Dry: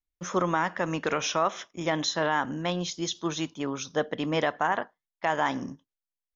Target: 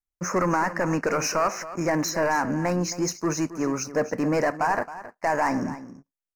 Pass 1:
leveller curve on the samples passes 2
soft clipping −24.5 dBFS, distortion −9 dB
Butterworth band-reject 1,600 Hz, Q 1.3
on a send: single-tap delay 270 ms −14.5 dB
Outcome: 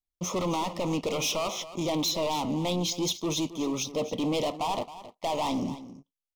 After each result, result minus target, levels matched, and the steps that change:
4,000 Hz band +10.5 dB; soft clipping: distortion +10 dB
change: Butterworth band-reject 3,400 Hz, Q 1.3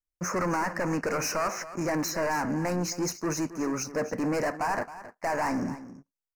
soft clipping: distortion +10 dB
change: soft clipping −15.5 dBFS, distortion −18 dB

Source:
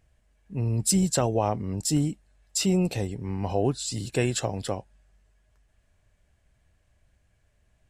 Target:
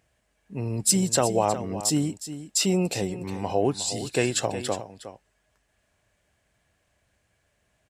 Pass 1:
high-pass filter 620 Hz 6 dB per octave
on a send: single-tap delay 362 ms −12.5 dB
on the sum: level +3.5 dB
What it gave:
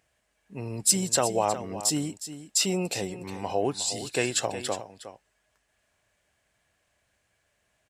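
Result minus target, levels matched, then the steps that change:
250 Hz band −3.5 dB
change: high-pass filter 270 Hz 6 dB per octave

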